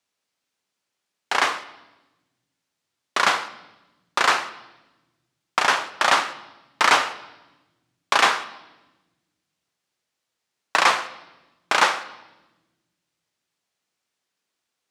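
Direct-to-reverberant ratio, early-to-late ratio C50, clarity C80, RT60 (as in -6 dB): 11.5 dB, 15.0 dB, 17.0 dB, 1.1 s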